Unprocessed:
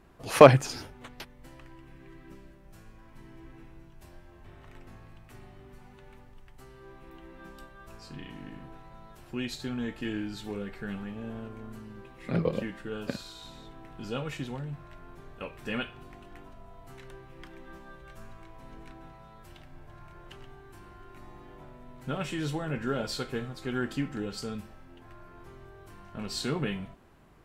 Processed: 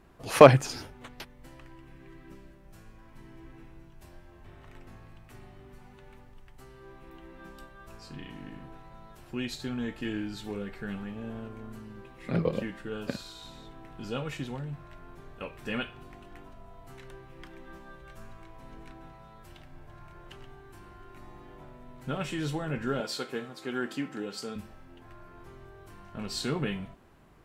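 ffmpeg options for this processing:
ffmpeg -i in.wav -filter_complex "[0:a]asettb=1/sr,asplit=3[link_01][link_02][link_03];[link_01]atrim=end=23.004[link_04];[link_02]atrim=start=23:end=24.56,asetpts=PTS-STARTPTS,afade=type=in:duration=0.004:curve=qsin,afade=type=out:start_time=1.556:duration=0.004:curve=qsin,highpass=230[link_05];[link_03]atrim=start=24.556[link_06];[link_04][link_05]acrossfade=duration=0.004:curve1=hsin:curve2=qsin[link_07];[link_07][link_06]acrossfade=duration=0.004:curve1=qsin:curve2=hsin" out.wav

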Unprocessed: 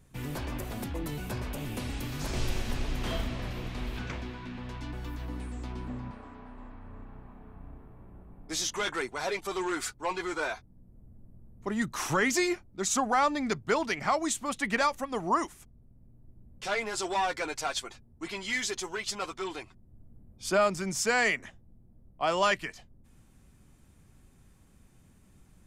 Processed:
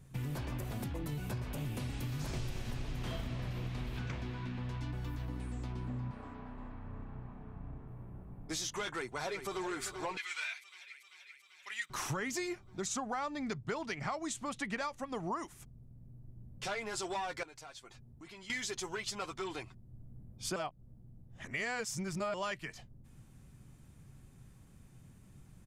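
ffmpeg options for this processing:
ffmpeg -i in.wav -filter_complex "[0:a]asettb=1/sr,asplit=3[link_01][link_02][link_03];[link_01]atrim=end=6.334[link_04];[link_02]atrim=start=6.33:end=7.88,asetpts=PTS-STARTPTS,afade=type=in:duration=0.004:curve=qsin,afade=type=out:start_time=1.546:duration=0.004:curve=qsin,lowpass=6900[link_05];[link_03]atrim=start=7.876[link_06];[link_04][link_05]acrossfade=duration=0.004:curve1=hsin:curve2=qsin[link_07];[link_07][link_06]acrossfade=duration=0.004:curve1=qsin:curve2=hsin,asplit=2[link_08][link_09];[link_09]afade=type=in:start_time=8.86:duration=0.01,afade=type=out:start_time=9.64:duration=0.01,aecho=0:1:390|780|1170|1560|1950|2340|2730|3120|3510|3900:0.266073|0.186251|0.130376|0.0912629|0.063884|0.0447188|0.0313032|0.0219122|0.0153386|0.010737[link_10];[link_08][link_10]amix=inputs=2:normalize=0,asettb=1/sr,asplit=3[link_11][link_12][link_13];[link_11]atrim=end=10.174[link_14];[link_12]atrim=start=10.17:end=11.9,asetpts=PTS-STARTPTS,afade=type=in:duration=0.004:curve=qsin,afade=type=out:start_time=1.726:duration=0.004:curve=qsin,highpass=frequency=2400:width_type=q:width=2.8[link_15];[link_13]atrim=start=11.896[link_16];[link_14][link_15]acrossfade=duration=0.004:curve1=hsin:curve2=qsin[link_17];[link_17][link_16]acrossfade=duration=0.004:curve1=qsin:curve2=hsin,asettb=1/sr,asplit=3[link_18][link_19][link_20];[link_18]atrim=end=12.864[link_21];[link_19]atrim=start=12.86:end=15.4,asetpts=PTS-STARTPTS,afade=type=in:duration=0.004:curve=qsin,afade=type=out:start_time=2.536:duration=0.004:curve=qsin,lowpass=9200[link_22];[link_20]atrim=start=15.396[link_23];[link_21][link_22]acrossfade=duration=0.004:curve1=hsin:curve2=qsin[link_24];[link_24][link_23]acrossfade=duration=0.004:curve1=qsin:curve2=hsin,asettb=1/sr,asplit=3[link_25][link_26][link_27];[link_25]atrim=end=17.434[link_28];[link_26]atrim=start=17.43:end=18.5,asetpts=PTS-STARTPTS,afade=type=in:duration=0.004:curve=qsin,afade=type=out:start_time=1.066:duration=0.004:curve=qsin,acompressor=threshold=-53dB:ratio=3:attack=3.2:release=140:knee=1:detection=peak[link_29];[link_27]atrim=start=18.496[link_30];[link_28][link_29]acrossfade=duration=0.004:curve1=hsin:curve2=qsin[link_31];[link_31][link_30]acrossfade=duration=0.004:curve1=qsin:curve2=hsin,asplit=3[link_32][link_33][link_34];[link_32]atrim=end=20.562[link_35];[link_33]atrim=start=20.558:end=22.342,asetpts=PTS-STARTPTS,areverse[link_36];[link_34]atrim=start=22.338[link_37];[link_35][link_36]acrossfade=duration=0.004:curve1=hsin:curve2=hsin[link_38];[link_38][link_37]acrossfade=duration=0.004:curve1=hsin:curve2=hsin,equalizer=frequency=130:width=2.1:gain=9,acompressor=threshold=-35dB:ratio=4,volume=-1dB" out.wav

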